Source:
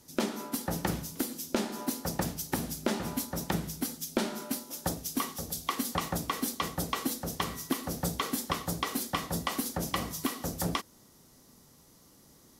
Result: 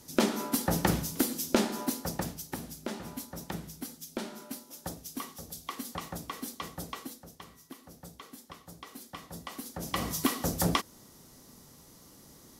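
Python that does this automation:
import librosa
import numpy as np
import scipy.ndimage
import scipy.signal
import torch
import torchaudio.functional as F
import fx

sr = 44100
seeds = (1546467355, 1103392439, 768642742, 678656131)

y = fx.gain(x, sr, db=fx.line((1.57, 4.5), (2.6, -7.0), (6.9, -7.0), (7.36, -16.5), (8.62, -16.5), (9.72, -8.0), (10.1, 4.0)))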